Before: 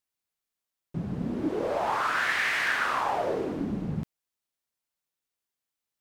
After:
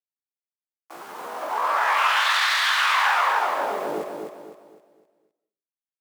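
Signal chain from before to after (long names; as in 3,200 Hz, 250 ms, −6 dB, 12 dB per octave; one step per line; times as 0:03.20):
pitch-shifted copies added −7 semitones −14 dB, +12 semitones 0 dB
in parallel at +1 dB: brickwall limiter −19.5 dBFS, peak gain reduction 7 dB
on the sum: bit reduction 7 bits
high-pass filter sweep 1,000 Hz → 73 Hz, 0:03.36–0:05.54
repeating echo 255 ms, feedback 38%, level −5 dB
on a send at −14 dB: convolution reverb RT60 0.40 s, pre-delay 115 ms
on the sum: every ending faded ahead of time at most 270 dB per second
level −5.5 dB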